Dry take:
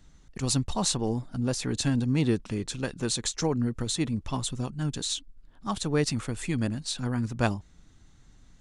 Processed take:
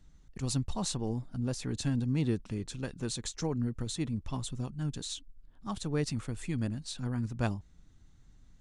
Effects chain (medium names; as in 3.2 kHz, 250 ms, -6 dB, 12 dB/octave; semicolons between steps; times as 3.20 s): bass shelf 230 Hz +6.5 dB; trim -8.5 dB